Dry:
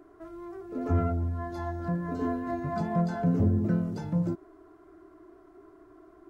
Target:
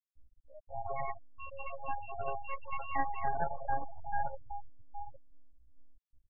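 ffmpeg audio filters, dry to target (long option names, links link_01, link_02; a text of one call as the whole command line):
ffmpeg -i in.wav -filter_complex "[0:a]acrossover=split=160 2500:gain=0.2 1 0.112[link_01][link_02][link_03];[link_01][link_02][link_03]amix=inputs=3:normalize=0,bandreject=frequency=50:width_type=h:width=6,bandreject=frequency=100:width_type=h:width=6,bandreject=frequency=150:width_type=h:width=6,bandreject=frequency=200:width_type=h:width=6,bandreject=frequency=250:width_type=h:width=6,bandreject=frequency=300:width_type=h:width=6,bandreject=frequency=350:width_type=h:width=6,bandreject=frequency=400:width_type=h:width=6,bandreject=frequency=450:width_type=h:width=6,flanger=delay=3.8:depth=7.1:regen=-68:speed=1.6:shape=sinusoidal,asplit=3[link_04][link_05][link_06];[link_04]bandpass=frequency=530:width_type=q:width=8,volume=0dB[link_07];[link_05]bandpass=frequency=1840:width_type=q:width=8,volume=-6dB[link_08];[link_06]bandpass=frequency=2480:width_type=q:width=8,volume=-9dB[link_09];[link_07][link_08][link_09]amix=inputs=3:normalize=0,lowshelf=frequency=300:gain=-11,bandreject=frequency=460:width=15,aeval=exprs='max(val(0),0)':channel_layout=same,asplit=2[link_10][link_11];[link_11]adelay=819,lowpass=frequency=810:poles=1,volume=-7dB,asplit=2[link_12][link_13];[link_13]adelay=819,lowpass=frequency=810:poles=1,volume=0.31,asplit=2[link_14][link_15];[link_15]adelay=819,lowpass=frequency=810:poles=1,volume=0.31,asplit=2[link_16][link_17];[link_17]adelay=819,lowpass=frequency=810:poles=1,volume=0.31[link_18];[link_12][link_14][link_16][link_18]amix=inputs=4:normalize=0[link_19];[link_10][link_19]amix=inputs=2:normalize=0,acontrast=63,aecho=1:1:2.4:0.34,afftfilt=real='re*gte(hypot(re,im),0.00891)':imag='im*gte(hypot(re,im),0.00891)':win_size=1024:overlap=0.75,asetrate=70004,aresample=44100,atempo=0.629961,volume=15.5dB" out.wav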